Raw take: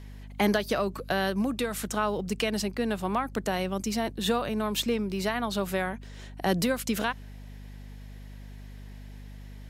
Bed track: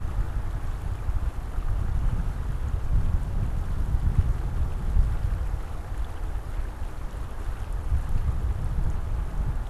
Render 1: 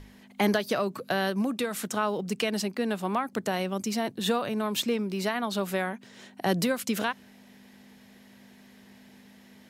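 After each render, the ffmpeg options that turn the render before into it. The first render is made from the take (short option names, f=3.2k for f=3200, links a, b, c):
-af "bandreject=f=50:t=h:w=6,bandreject=f=100:t=h:w=6,bandreject=f=150:t=h:w=6"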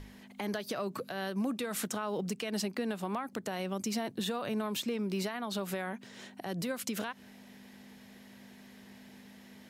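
-af "acompressor=threshold=-29dB:ratio=4,alimiter=level_in=1dB:limit=-24dB:level=0:latency=1:release=157,volume=-1dB"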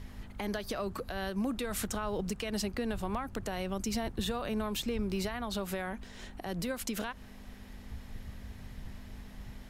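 -filter_complex "[1:a]volume=-19dB[a];[0:a][a]amix=inputs=2:normalize=0"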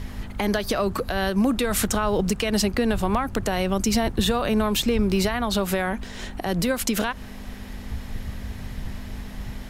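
-af "volume=12dB"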